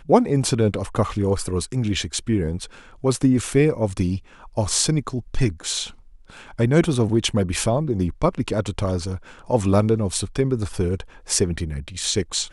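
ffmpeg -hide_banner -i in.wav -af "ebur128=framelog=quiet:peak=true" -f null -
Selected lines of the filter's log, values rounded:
Integrated loudness:
  I:         -22.3 LUFS
  Threshold: -32.5 LUFS
Loudness range:
  LRA:         1.1 LU
  Threshold: -42.6 LUFS
  LRA low:   -23.2 LUFS
  LRA high:  -22.1 LUFS
True peak:
  Peak:       -2.2 dBFS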